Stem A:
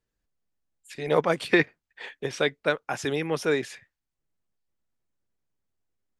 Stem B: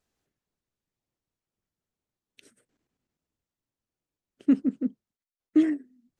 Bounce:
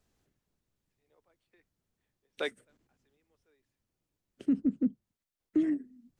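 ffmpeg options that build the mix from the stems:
-filter_complex "[0:a]highpass=f=250:w=0.5412,highpass=f=250:w=1.3066,volume=0.355[s0];[1:a]lowshelf=f=270:g=7.5,acrossover=split=180[s1][s2];[s2]acompressor=threshold=0.01:ratio=1.5[s3];[s1][s3]amix=inputs=2:normalize=0,volume=1.33,asplit=2[s4][s5];[s5]apad=whole_len=273129[s6];[s0][s6]sidechaingate=range=0.0112:threshold=0.00141:ratio=16:detection=peak[s7];[s7][s4]amix=inputs=2:normalize=0,alimiter=limit=0.106:level=0:latency=1:release=180"

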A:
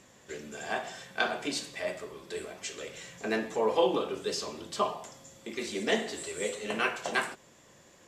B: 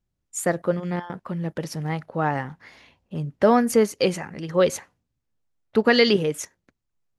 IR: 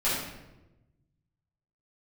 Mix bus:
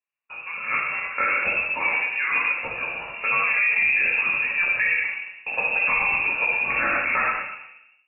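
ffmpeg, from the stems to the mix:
-filter_complex "[0:a]agate=range=0.0126:threshold=0.00355:ratio=16:detection=peak,volume=0.794,asplit=2[s0][s1];[s1]volume=0.376[s2];[1:a]highpass=f=770:p=1,alimiter=limit=0.141:level=0:latency=1,volume=0.224,asplit=2[s3][s4];[s4]volume=0.531[s5];[2:a]atrim=start_sample=2205[s6];[s2][s5]amix=inputs=2:normalize=0[s7];[s7][s6]afir=irnorm=-1:irlink=0[s8];[s0][s3][s8]amix=inputs=3:normalize=0,dynaudnorm=f=530:g=3:m=3.35,lowpass=f=2500:t=q:w=0.5098,lowpass=f=2500:t=q:w=0.6013,lowpass=f=2500:t=q:w=0.9,lowpass=f=2500:t=q:w=2.563,afreqshift=-2900,alimiter=limit=0.224:level=0:latency=1:release=46"

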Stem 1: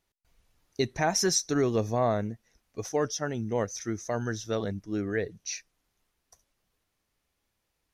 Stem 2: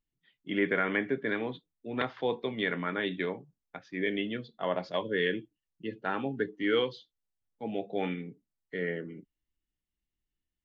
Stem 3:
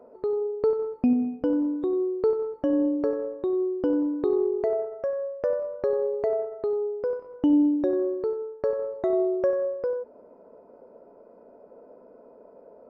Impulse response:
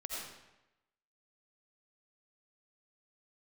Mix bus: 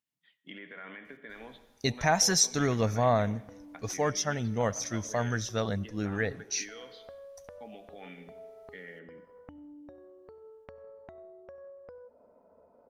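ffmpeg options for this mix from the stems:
-filter_complex "[0:a]adelay=1050,volume=1.33,asplit=2[s0][s1];[s1]volume=0.0794[s2];[1:a]highpass=220,alimiter=level_in=1.06:limit=0.0631:level=0:latency=1:release=112,volume=0.944,volume=1,asplit=2[s3][s4];[s4]volume=0.126[s5];[2:a]acompressor=threshold=0.02:ratio=6,adelay=2050,volume=0.422,asplit=2[s6][s7];[s7]volume=0.119[s8];[s3][s6]amix=inputs=2:normalize=0,equalizer=f=80:t=o:w=0.22:g=15,acompressor=threshold=0.00794:ratio=6,volume=1[s9];[3:a]atrim=start_sample=2205[s10];[s2][s5][s8]amix=inputs=3:normalize=0[s11];[s11][s10]afir=irnorm=-1:irlink=0[s12];[s0][s9][s12]amix=inputs=3:normalize=0,equalizer=f=360:t=o:w=0.76:g=-10"

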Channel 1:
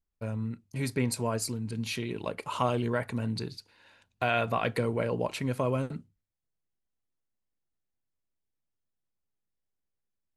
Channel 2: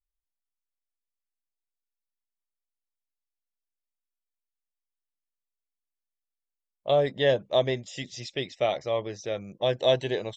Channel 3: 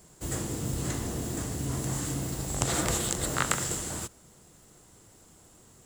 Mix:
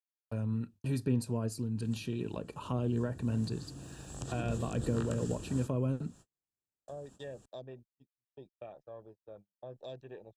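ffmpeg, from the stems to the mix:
-filter_complex "[0:a]adelay=100,volume=1[s0];[1:a]afwtdn=0.0178,bandreject=f=3000:w=5.9,volume=0.126[s1];[2:a]lowpass=8900,adelay=1600,volume=0.631,afade=t=in:st=2.59:d=0.43:silence=0.316228,afade=t=in:st=4.04:d=0.76:silence=0.316228[s2];[s0][s1][s2]amix=inputs=3:normalize=0,agate=range=0.00891:threshold=0.00251:ratio=16:detection=peak,acrossover=split=400[s3][s4];[s4]acompressor=threshold=0.00447:ratio=3[s5];[s3][s5]amix=inputs=2:normalize=0,asuperstop=centerf=2100:order=12:qfactor=4.9"

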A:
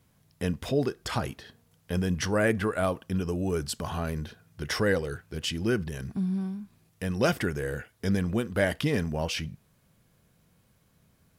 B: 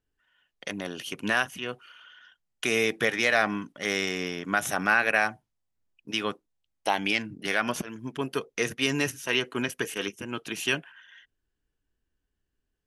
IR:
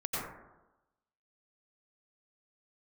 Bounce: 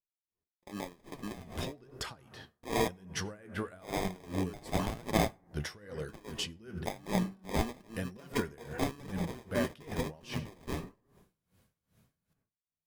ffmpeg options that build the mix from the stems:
-filter_complex "[0:a]acompressor=threshold=0.0398:ratio=5,adelay=950,volume=1.19,asplit=2[s0][s1];[s1]volume=0.119[s2];[1:a]agate=range=0.0708:threshold=0.00398:ratio=16:detection=peak,highshelf=f=8200:g=10.5,acrusher=samples=31:mix=1:aa=0.000001,volume=1.12,asplit=3[s3][s4][s5];[s3]atrim=end=2.88,asetpts=PTS-STARTPTS,afade=t=out:st=2.876:d=0.004:c=hsin[s6];[s4]atrim=start=2.88:end=3.73,asetpts=PTS-STARTPTS,volume=0[s7];[s5]atrim=start=3.73,asetpts=PTS-STARTPTS,afade=t=in:d=0.004:c=hsin[s8];[s6][s7][s8]concat=n=3:v=0:a=1,asplit=2[s9][s10];[s10]volume=0.0891[s11];[2:a]atrim=start_sample=2205[s12];[s2][s11]amix=inputs=2:normalize=0[s13];[s13][s12]afir=irnorm=-1:irlink=0[s14];[s0][s9][s14]amix=inputs=3:normalize=0,flanger=delay=4.6:depth=9.2:regen=58:speed=0.98:shape=triangular,aeval=exprs='val(0)*pow(10,-23*(0.5-0.5*cos(2*PI*2.5*n/s))/20)':c=same"

